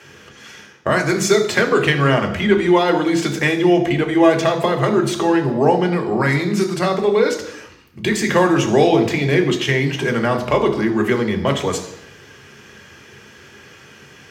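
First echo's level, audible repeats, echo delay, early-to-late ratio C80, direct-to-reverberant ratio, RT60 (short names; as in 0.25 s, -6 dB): none, none, none, 12.5 dB, 4.0 dB, 0.80 s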